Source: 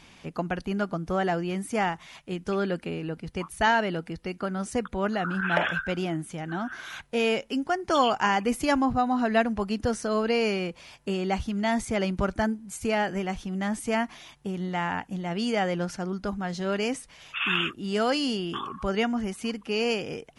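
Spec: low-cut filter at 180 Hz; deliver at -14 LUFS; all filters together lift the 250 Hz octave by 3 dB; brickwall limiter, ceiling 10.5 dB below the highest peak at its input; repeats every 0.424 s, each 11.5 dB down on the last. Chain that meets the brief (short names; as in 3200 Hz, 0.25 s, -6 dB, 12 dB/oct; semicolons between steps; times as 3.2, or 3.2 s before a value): HPF 180 Hz; bell 250 Hz +5.5 dB; limiter -19 dBFS; feedback echo 0.424 s, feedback 27%, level -11.5 dB; gain +15 dB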